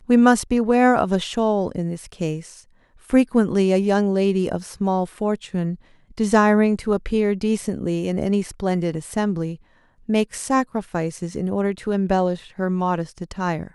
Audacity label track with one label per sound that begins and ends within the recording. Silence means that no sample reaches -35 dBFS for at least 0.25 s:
3.090000	5.750000	sound
6.110000	9.560000	sound